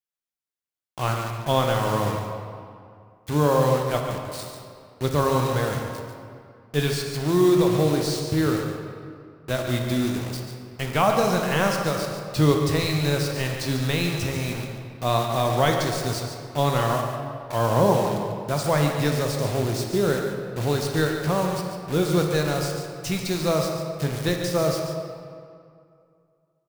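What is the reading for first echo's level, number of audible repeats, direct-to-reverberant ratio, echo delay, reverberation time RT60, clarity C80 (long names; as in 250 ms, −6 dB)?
−8.5 dB, 1, 1.5 dB, 142 ms, 2.3 s, 3.5 dB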